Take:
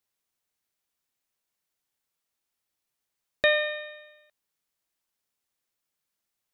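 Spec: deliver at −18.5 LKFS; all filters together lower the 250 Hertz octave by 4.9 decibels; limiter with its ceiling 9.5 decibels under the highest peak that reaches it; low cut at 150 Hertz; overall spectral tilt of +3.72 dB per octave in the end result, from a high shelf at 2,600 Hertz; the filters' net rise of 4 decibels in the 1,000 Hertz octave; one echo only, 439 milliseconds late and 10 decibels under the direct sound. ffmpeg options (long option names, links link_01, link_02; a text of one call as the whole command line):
ffmpeg -i in.wav -af "highpass=150,equalizer=frequency=250:width_type=o:gain=-6.5,equalizer=frequency=1000:width_type=o:gain=4,highshelf=frequency=2600:gain=6.5,alimiter=limit=-17dB:level=0:latency=1,aecho=1:1:439:0.316,volume=10.5dB" out.wav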